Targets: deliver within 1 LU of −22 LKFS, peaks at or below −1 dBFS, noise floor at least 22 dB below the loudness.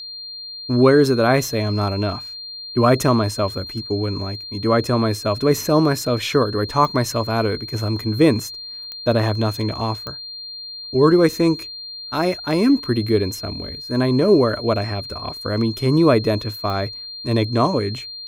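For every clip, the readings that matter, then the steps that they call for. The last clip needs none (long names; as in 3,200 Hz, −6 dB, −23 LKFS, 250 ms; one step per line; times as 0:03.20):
number of clicks 4; interfering tone 4,200 Hz; level of the tone −31 dBFS; integrated loudness −19.5 LKFS; sample peak −3.0 dBFS; target loudness −22.0 LKFS
→ click removal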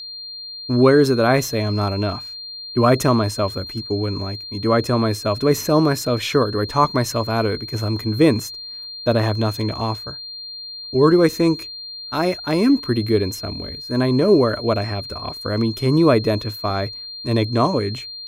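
number of clicks 0; interfering tone 4,200 Hz; level of the tone −31 dBFS
→ notch filter 4,200 Hz, Q 30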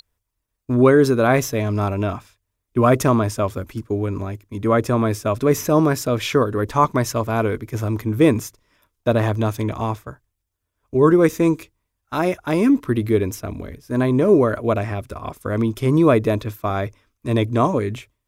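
interfering tone none found; integrated loudness −19.5 LKFS; sample peak −3.0 dBFS; target loudness −22.0 LKFS
→ level −2.5 dB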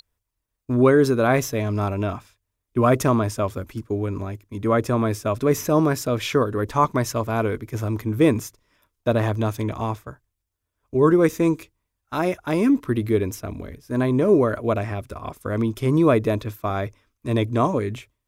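integrated loudness −22.0 LKFS; sample peak −5.5 dBFS; background noise floor −80 dBFS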